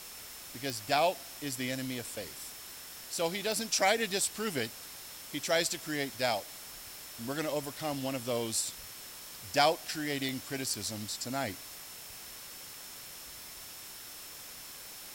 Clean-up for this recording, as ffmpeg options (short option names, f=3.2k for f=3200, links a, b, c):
-af "adeclick=t=4,bandreject=f=5.4k:w=30,afwtdn=0.005"